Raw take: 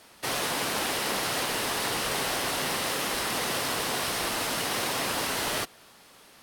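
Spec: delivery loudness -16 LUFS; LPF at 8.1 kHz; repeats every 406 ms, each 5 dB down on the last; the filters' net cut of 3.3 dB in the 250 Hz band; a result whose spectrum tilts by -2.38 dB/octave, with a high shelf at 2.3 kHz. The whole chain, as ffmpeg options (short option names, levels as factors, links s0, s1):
-af "lowpass=8100,equalizer=f=250:t=o:g=-4.5,highshelf=f=2300:g=4.5,aecho=1:1:406|812|1218|1624|2030|2436|2842:0.562|0.315|0.176|0.0988|0.0553|0.031|0.0173,volume=2.82"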